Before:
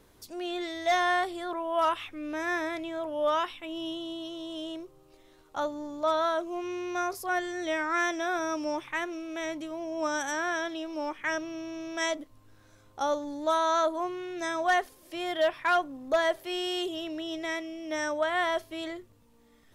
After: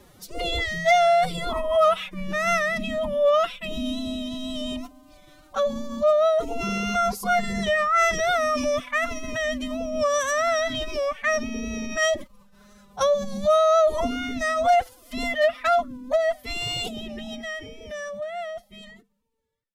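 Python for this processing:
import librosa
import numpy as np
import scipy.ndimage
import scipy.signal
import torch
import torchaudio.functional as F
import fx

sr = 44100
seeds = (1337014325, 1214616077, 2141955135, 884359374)

y = fx.fade_out_tail(x, sr, length_s=5.57)
y = fx.pitch_keep_formants(y, sr, semitones=11.5)
y = fx.wow_flutter(y, sr, seeds[0], rate_hz=2.1, depth_cents=22.0)
y = F.gain(torch.from_numpy(y), 8.0).numpy()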